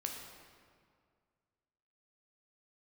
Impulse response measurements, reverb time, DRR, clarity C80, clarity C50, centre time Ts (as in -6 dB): 2.1 s, 1.0 dB, 4.5 dB, 3.5 dB, 63 ms